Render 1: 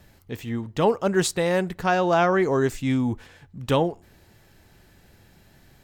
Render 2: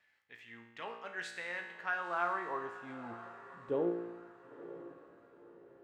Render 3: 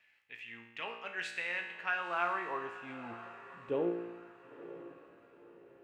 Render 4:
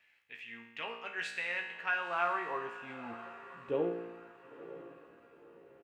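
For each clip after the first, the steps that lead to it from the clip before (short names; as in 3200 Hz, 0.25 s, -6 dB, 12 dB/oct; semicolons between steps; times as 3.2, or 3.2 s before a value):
band-pass sweep 2000 Hz -> 320 Hz, 1.62–4.08; resonator 58 Hz, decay 1 s, harmonics all, mix 80%; diffused feedback echo 0.947 s, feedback 40%, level -14.5 dB; gain +2.5 dB
bell 2600 Hz +12 dB 0.49 oct
doubler 13 ms -8.5 dB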